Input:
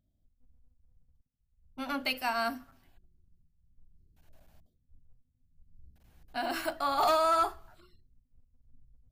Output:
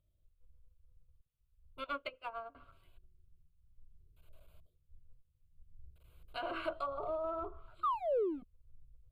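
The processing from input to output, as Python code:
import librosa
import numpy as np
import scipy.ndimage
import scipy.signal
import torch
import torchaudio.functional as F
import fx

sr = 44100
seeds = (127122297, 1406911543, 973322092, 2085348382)

p1 = fx.env_lowpass_down(x, sr, base_hz=510.0, full_db=-25.5)
p2 = fx.graphic_eq_10(p1, sr, hz=(250, 2000, 8000), db=(-6, -11, 7), at=(6.73, 7.24))
p3 = fx.spec_paint(p2, sr, seeds[0], shape='fall', start_s=7.83, length_s=0.6, low_hz=230.0, high_hz=1300.0, level_db=-31.0)
p4 = np.clip(p3, -10.0 ** (-30.5 / 20.0), 10.0 ** (-30.5 / 20.0))
p5 = p3 + (p4 * librosa.db_to_amplitude(-5.0))
p6 = fx.fixed_phaser(p5, sr, hz=1200.0, stages=8)
p7 = fx.upward_expand(p6, sr, threshold_db=-47.0, expansion=2.5, at=(1.84, 2.55))
y = p7 * librosa.db_to_amplitude(-3.0)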